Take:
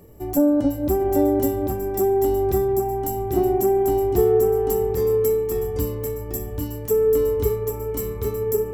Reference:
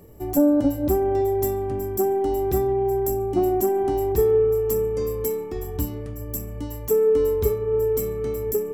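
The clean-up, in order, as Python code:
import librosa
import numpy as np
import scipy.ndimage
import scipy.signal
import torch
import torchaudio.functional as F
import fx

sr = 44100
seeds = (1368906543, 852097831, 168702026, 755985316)

y = fx.fix_echo_inverse(x, sr, delay_ms=792, level_db=-4.0)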